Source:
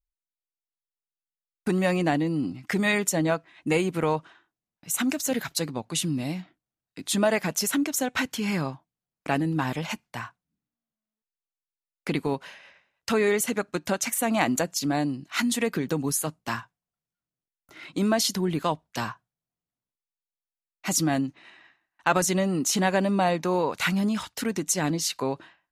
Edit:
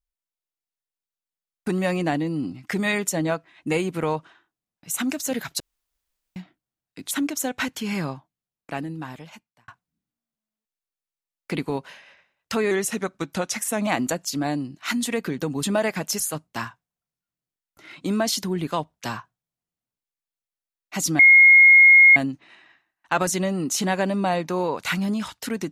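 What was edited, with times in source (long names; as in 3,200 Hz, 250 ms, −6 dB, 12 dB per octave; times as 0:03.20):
0:05.60–0:06.36: fill with room tone
0:07.11–0:07.68: move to 0:16.12
0:08.63–0:10.25: fade out linear
0:13.28–0:14.36: play speed 93%
0:21.11: insert tone 2,150 Hz −8 dBFS 0.97 s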